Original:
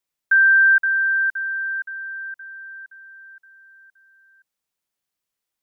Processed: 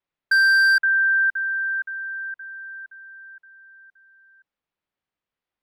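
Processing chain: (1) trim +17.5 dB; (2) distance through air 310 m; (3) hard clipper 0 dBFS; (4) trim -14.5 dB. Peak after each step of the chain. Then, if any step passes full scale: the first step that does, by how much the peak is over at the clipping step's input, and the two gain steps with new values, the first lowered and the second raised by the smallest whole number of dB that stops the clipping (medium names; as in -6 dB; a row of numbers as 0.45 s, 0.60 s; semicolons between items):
+7.0 dBFS, +5.0 dBFS, 0.0 dBFS, -14.5 dBFS; step 1, 5.0 dB; step 1 +12.5 dB, step 4 -9.5 dB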